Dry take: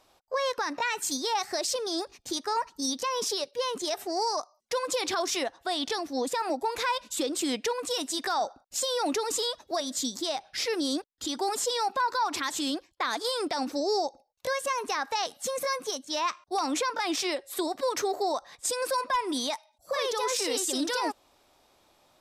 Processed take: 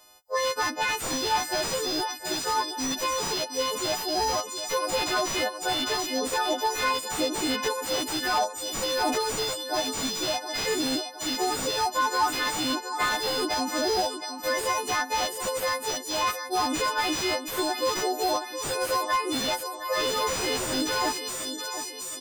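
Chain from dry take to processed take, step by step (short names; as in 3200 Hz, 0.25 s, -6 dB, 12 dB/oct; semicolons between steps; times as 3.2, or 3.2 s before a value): frequency quantiser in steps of 3 st; feedback echo 0.717 s, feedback 51%, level -10 dB; slew limiter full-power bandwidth 130 Hz; gain +1.5 dB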